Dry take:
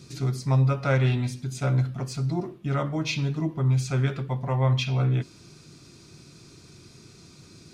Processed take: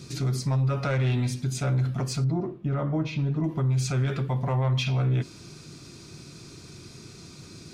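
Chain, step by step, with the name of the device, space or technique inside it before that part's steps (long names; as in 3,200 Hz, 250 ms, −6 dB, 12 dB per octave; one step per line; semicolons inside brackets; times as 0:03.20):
soft clipper into limiter (soft clipping −17 dBFS, distortion −19 dB; brickwall limiter −24 dBFS, peak gain reduction 6.5 dB)
0:02.24–0:03.44: low-pass filter 1,000 Hz 6 dB per octave
level +4.5 dB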